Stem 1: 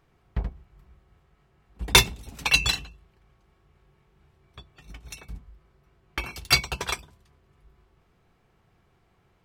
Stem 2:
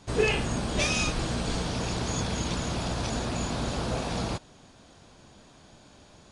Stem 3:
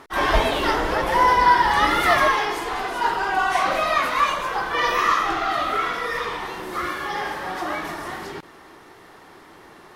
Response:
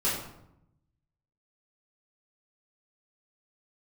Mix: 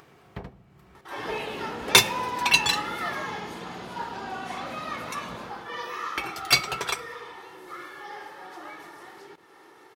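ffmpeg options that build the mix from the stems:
-filter_complex "[0:a]volume=0dB,asplit=2[link_01][link_02];[link_02]volume=-23.5dB[link_03];[1:a]lowpass=3800,adelay=1100,volume=-10dB,asplit=2[link_04][link_05];[link_05]volume=-6dB[link_06];[2:a]aecho=1:1:2.3:0.44,adelay=950,volume=-14.5dB[link_07];[3:a]atrim=start_sample=2205[link_08];[link_03][link_08]afir=irnorm=-1:irlink=0[link_09];[link_06]aecho=0:1:154|308|462|616|770|924|1078|1232|1386|1540:1|0.6|0.36|0.216|0.13|0.0778|0.0467|0.028|0.0168|0.0101[link_10];[link_01][link_04][link_07][link_09][link_10]amix=inputs=5:normalize=0,highpass=170,acompressor=mode=upward:threshold=-43dB:ratio=2.5"

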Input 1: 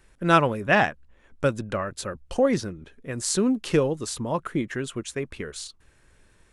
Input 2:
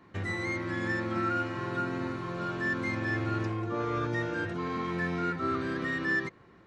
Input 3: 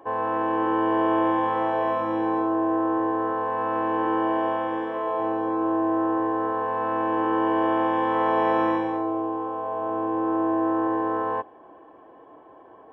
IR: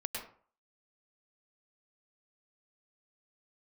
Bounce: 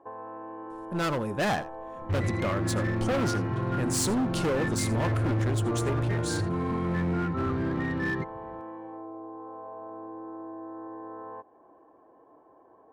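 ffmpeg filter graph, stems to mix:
-filter_complex "[0:a]equalizer=frequency=2200:width=1.5:gain=-5.5,volume=22.5dB,asoftclip=hard,volume=-22.5dB,dynaudnorm=framelen=120:gausssize=11:maxgain=5dB,adelay=700,volume=-3.5dB,asplit=2[link_01][link_02];[link_02]volume=-18dB[link_03];[1:a]aemphasis=mode=reproduction:type=riaa,adelay=1950,volume=-1.5dB[link_04];[2:a]lowpass=1400,acompressor=threshold=-30dB:ratio=6,volume=-8dB[link_05];[link_03]aecho=0:1:82:1[link_06];[link_01][link_04][link_05][link_06]amix=inputs=4:normalize=0,volume=23.5dB,asoftclip=hard,volume=-23.5dB"

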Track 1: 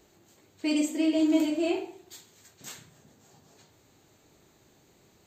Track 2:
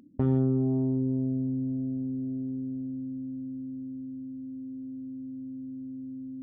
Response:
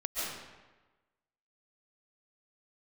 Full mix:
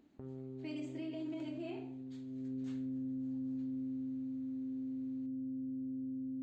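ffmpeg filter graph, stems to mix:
-filter_complex "[0:a]lowpass=3600,volume=-13dB[link_01];[1:a]equalizer=frequency=440:width_type=o:width=1.1:gain=6.5,acompressor=threshold=-29dB:ratio=6,volume=-4dB,afade=type=in:start_time=2.25:duration=0.54:silence=0.298538[link_02];[link_01][link_02]amix=inputs=2:normalize=0,alimiter=level_in=11dB:limit=-24dB:level=0:latency=1:release=56,volume=-11dB"

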